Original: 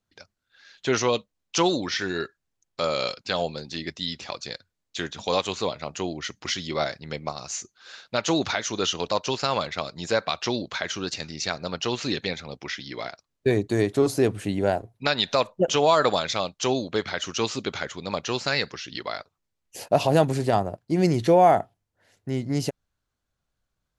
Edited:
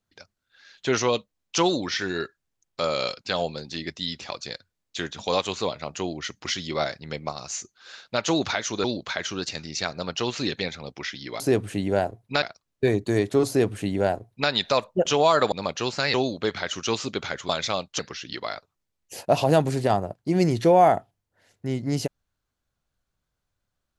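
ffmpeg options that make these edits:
-filter_complex "[0:a]asplit=8[s0][s1][s2][s3][s4][s5][s6][s7];[s0]atrim=end=8.842[s8];[s1]atrim=start=10.488:end=13.052[s9];[s2]atrim=start=14.108:end=15.132[s10];[s3]atrim=start=13.048:end=16.152[s11];[s4]atrim=start=17.998:end=18.622[s12];[s5]atrim=start=16.648:end=18.002[s13];[s6]atrim=start=16.148:end=16.652[s14];[s7]atrim=start=18.618[s15];[s8][s9]acrossfade=d=0.004:c1=hsin:c2=hsin[s16];[s16][s10]acrossfade=d=0.004:c1=hsin:c2=hsin[s17];[s17][s11]acrossfade=d=0.004:c1=hsin:c2=hsin[s18];[s18][s12]acrossfade=d=0.004:c1=hsin:c2=hsin[s19];[s19][s13]acrossfade=d=0.004:c1=hsin:c2=hsin[s20];[s20][s14]acrossfade=d=0.004:c1=hsin:c2=hsin[s21];[s21][s15]acrossfade=d=0.004:c1=hsin:c2=hsin"

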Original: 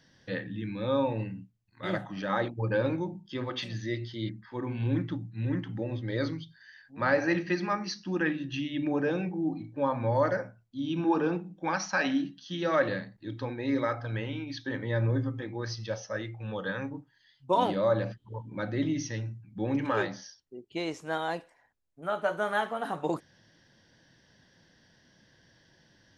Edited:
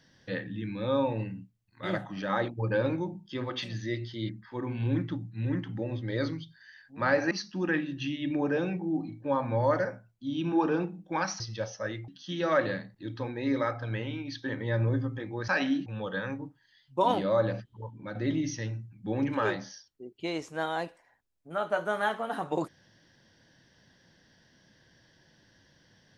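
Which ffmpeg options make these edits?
-filter_complex "[0:a]asplit=7[s0][s1][s2][s3][s4][s5][s6];[s0]atrim=end=7.312[s7];[s1]atrim=start=7.828:end=11.922[s8];[s2]atrim=start=15.698:end=16.382[s9];[s3]atrim=start=12.298:end=15.702[s10];[s4]atrim=start=11.918:end=12.302[s11];[s5]atrim=start=16.378:end=18.67,asetpts=PTS-STARTPTS,afade=t=out:st=1.822:d=0.47:silence=0.473151[s12];[s6]atrim=start=18.67,asetpts=PTS-STARTPTS,afade=t=in:d=0.004:c=hsin:silence=0.473151[s13];[s7][s8]acrossfade=d=0.004:c1=hsin:c2=hsin[s14];[s14][s9]acrossfade=d=0.004:c1=hsin:c2=hsin[s15];[s15][s10]acrossfade=d=0.004:c1=hsin:c2=hsin[s16];[s16][s11]acrossfade=d=0.004:c1=hsin:c2=hsin[s17];[s12][s13]concat=n=2:v=0:a=1[s18];[s17][s18]acrossfade=d=0.004:c1=hsin:c2=hsin"

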